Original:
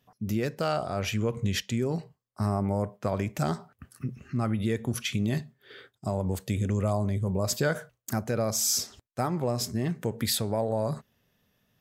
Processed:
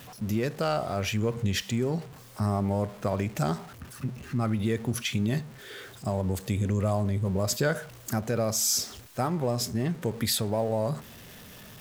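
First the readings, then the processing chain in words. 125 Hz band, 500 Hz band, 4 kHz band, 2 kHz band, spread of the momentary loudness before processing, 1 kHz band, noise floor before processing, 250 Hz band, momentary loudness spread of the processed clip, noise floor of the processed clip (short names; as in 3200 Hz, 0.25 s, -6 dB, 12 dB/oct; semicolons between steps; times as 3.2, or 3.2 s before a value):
+1.0 dB, +0.5 dB, +1.0 dB, +1.0 dB, 7 LU, +0.5 dB, -78 dBFS, +0.5 dB, 11 LU, -48 dBFS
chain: zero-crossing step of -41.5 dBFS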